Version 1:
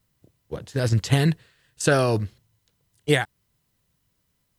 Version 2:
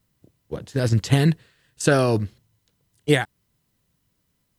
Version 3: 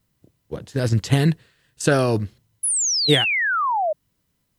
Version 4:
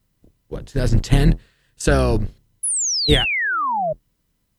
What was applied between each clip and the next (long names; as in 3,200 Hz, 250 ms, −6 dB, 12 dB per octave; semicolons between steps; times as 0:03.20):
parametric band 250 Hz +4 dB 1.4 octaves
sound drawn into the spectrogram fall, 0:02.63–0:03.93, 590–11,000 Hz −21 dBFS
sub-octave generator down 2 octaves, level +2 dB